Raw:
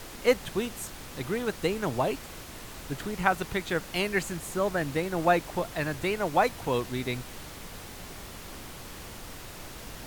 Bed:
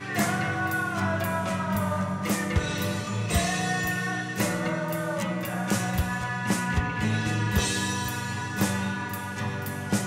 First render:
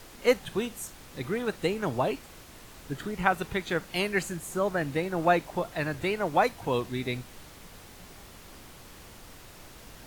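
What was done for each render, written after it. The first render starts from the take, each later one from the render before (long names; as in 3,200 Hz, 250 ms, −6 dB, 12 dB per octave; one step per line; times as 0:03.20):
noise reduction from a noise print 6 dB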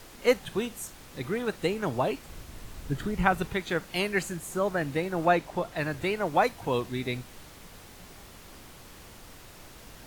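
0:02.25–0:03.48: low-shelf EQ 150 Hz +11.5 dB
0:05.26–0:05.77: high-shelf EQ 9,000 Hz −5 dB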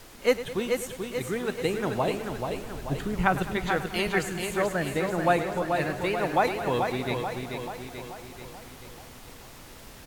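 repeating echo 435 ms, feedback 55%, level −5.5 dB
feedback echo with a swinging delay time 105 ms, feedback 69%, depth 54 cents, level −14.5 dB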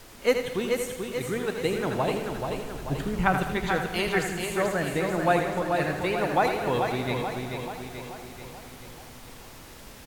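repeating echo 80 ms, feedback 43%, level −8 dB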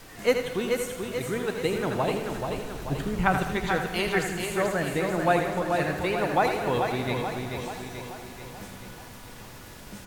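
mix in bed −19 dB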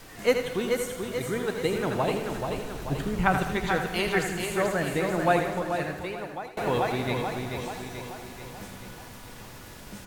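0:00.62–0:01.75: notch filter 2,600 Hz
0:05.35–0:06.57: fade out, to −22.5 dB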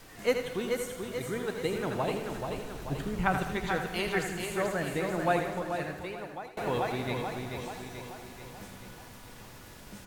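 level −4.5 dB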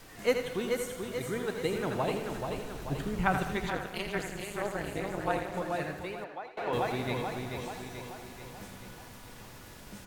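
0:03.70–0:05.54: amplitude modulation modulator 210 Hz, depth 95%
0:06.24–0:06.73: three-way crossover with the lows and the highs turned down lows −12 dB, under 320 Hz, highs −17 dB, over 4,700 Hz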